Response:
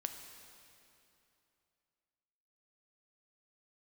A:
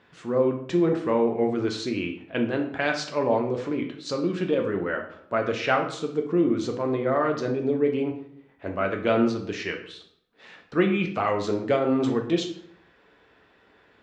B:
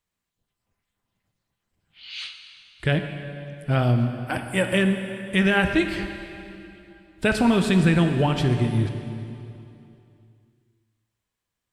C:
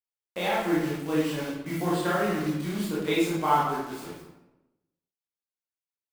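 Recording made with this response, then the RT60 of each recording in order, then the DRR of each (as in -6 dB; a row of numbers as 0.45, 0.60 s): B; 0.65, 2.9, 1.0 s; 2.5, 5.5, -8.0 dB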